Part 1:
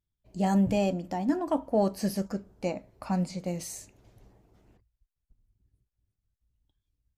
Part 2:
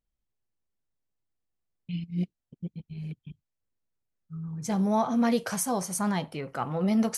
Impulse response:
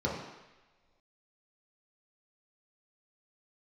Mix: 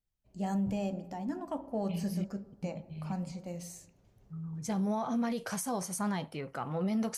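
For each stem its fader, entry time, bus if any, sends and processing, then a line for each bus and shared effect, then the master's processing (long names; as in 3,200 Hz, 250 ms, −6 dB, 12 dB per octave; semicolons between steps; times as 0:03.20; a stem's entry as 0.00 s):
−8.0 dB, 0.00 s, send −20.5 dB, no processing
−4.0 dB, 0.00 s, no send, no processing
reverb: on, pre-delay 3 ms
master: brickwall limiter −25.5 dBFS, peak gain reduction 7 dB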